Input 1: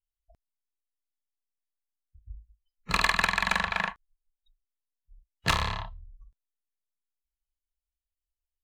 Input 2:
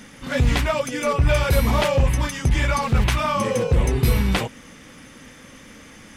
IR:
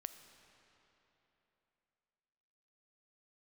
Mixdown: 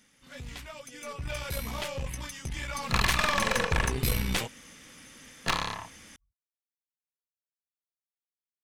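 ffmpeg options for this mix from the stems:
-filter_complex "[0:a]afwtdn=0.00794,highpass=150,highshelf=f=9400:g=11,volume=1.33[s0];[1:a]highshelf=f=2100:g=10.5,volume=0.473,afade=t=in:st=0.72:d=0.79:silence=0.473151,afade=t=in:st=2.72:d=0.3:silence=0.446684[s1];[s0][s1]amix=inputs=2:normalize=0,aeval=exprs='(tanh(8.91*val(0)+0.75)-tanh(0.75))/8.91':c=same"

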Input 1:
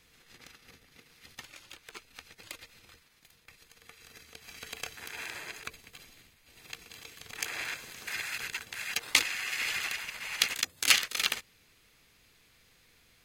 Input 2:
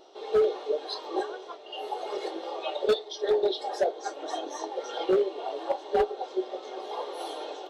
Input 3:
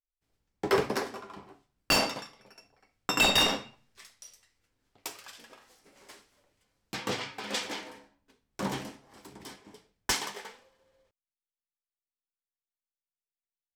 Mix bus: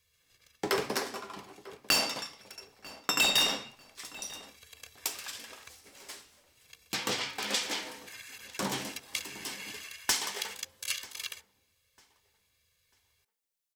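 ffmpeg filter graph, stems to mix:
-filter_complex "[0:a]equalizer=f=81:w=1.5:g=14,aecho=1:1:1.8:0.97,volume=0.119[s0];[2:a]volume=1.12,asplit=2[s1][s2];[s2]volume=0.0668[s3];[s0][s1]amix=inputs=2:normalize=0,highshelf=f=2600:g=9,acompressor=threshold=0.0316:ratio=2,volume=1[s4];[s3]aecho=0:1:944|1888|2832|3776:1|0.28|0.0784|0.022[s5];[s4][s5]amix=inputs=2:normalize=0,lowshelf=f=89:g=-8"

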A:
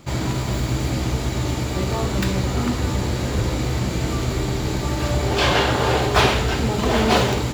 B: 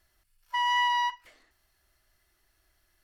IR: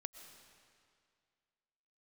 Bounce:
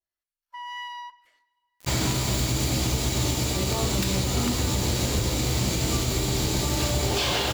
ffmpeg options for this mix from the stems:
-filter_complex "[0:a]highshelf=f=2500:g=10.5,alimiter=limit=0.211:level=0:latency=1:release=172,acrusher=bits=5:mix=0:aa=0.000001,adelay=1800,volume=0.891[s0];[1:a]agate=range=0.224:threshold=0.001:ratio=16:detection=peak,lowshelf=f=150:g=-11,acrossover=split=1100[s1][s2];[s1]aeval=exprs='val(0)*(1-0.5/2+0.5/2*cos(2*PI*1.8*n/s))':c=same[s3];[s2]aeval=exprs='val(0)*(1-0.5/2-0.5/2*cos(2*PI*1.8*n/s))':c=same[s4];[s3][s4]amix=inputs=2:normalize=0,volume=0.355,asplit=2[s5][s6];[s6]volume=0.266[s7];[2:a]atrim=start_sample=2205[s8];[s7][s8]afir=irnorm=-1:irlink=0[s9];[s0][s5][s9]amix=inputs=3:normalize=0,adynamicequalizer=threshold=0.00708:dfrequency=1600:dqfactor=1.4:tfrequency=1600:tqfactor=1.4:attack=5:release=100:ratio=0.375:range=2.5:mode=cutabove:tftype=bell"

